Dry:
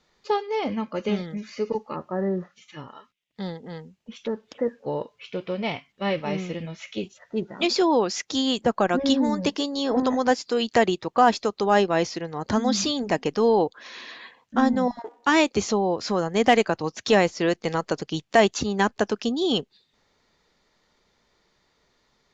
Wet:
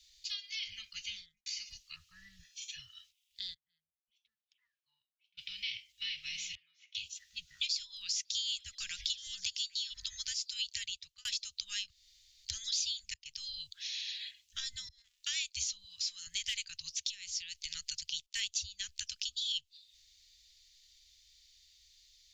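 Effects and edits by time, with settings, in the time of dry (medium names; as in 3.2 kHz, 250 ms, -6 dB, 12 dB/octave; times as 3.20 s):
0.95–1.46 s: studio fade out
2.39–2.79 s: comb 1.2 ms, depth 70%
3.53–5.37 s: wah-wah 0.43 Hz -> 1.1 Hz 380–1100 Hz, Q 10
6.55–6.95 s: band-pass filter 1.1 kHz, Q 6.4
7.71–9.94 s: repeats whose band climbs or falls 268 ms, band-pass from 410 Hz, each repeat 1.4 oct, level -9 dB
10.72–11.25 s: fade out
11.90–12.45 s: room tone
13.14–13.73 s: fade in
14.89–15.31 s: fade in
15.84–16.27 s: bass shelf 330 Hz -11 dB
17.03–17.75 s: compression 16:1, threshold -25 dBFS
18.26–18.88 s: three bands expanded up and down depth 100%
whole clip: inverse Chebyshev band-stop 280–740 Hz, stop band 80 dB; treble shelf 2.4 kHz +9.5 dB; compression 3:1, threshold -39 dBFS; trim +1.5 dB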